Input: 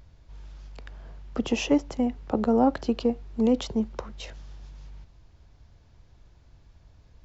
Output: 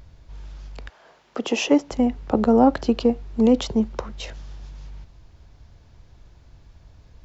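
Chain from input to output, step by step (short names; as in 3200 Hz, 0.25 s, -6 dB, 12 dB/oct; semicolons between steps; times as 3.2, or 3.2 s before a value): 0.88–1.9 HPF 670 Hz -> 180 Hz 12 dB/oct; gain +5.5 dB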